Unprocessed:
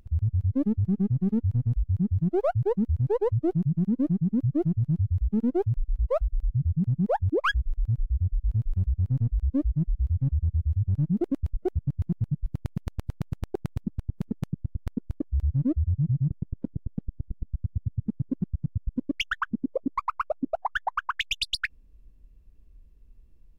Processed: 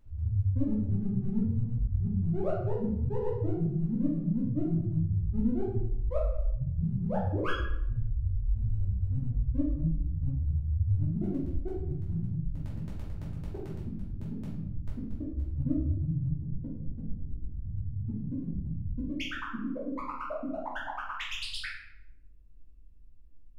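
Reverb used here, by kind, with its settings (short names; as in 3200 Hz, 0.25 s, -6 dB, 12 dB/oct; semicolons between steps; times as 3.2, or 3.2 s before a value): shoebox room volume 200 m³, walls mixed, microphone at 2.7 m; gain -16 dB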